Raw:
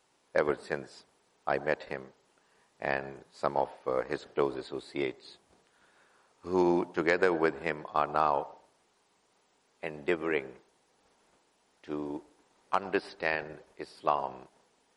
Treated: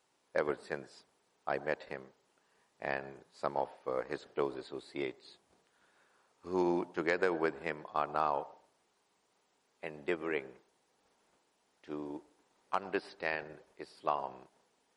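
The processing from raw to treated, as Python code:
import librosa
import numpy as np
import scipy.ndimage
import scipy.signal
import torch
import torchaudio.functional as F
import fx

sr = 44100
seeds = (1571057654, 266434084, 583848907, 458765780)

y = fx.low_shelf(x, sr, hz=68.0, db=-6.0)
y = y * librosa.db_to_amplitude(-5.0)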